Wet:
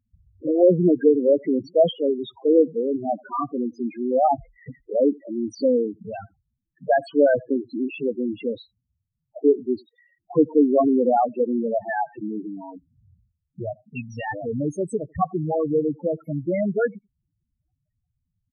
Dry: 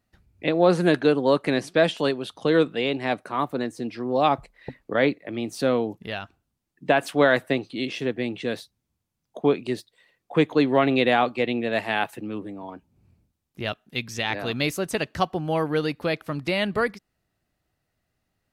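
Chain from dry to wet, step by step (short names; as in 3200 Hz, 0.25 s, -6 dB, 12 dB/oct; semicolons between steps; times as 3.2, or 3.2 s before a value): outdoor echo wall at 15 m, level -27 dB; loudest bins only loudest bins 4; gain +4.5 dB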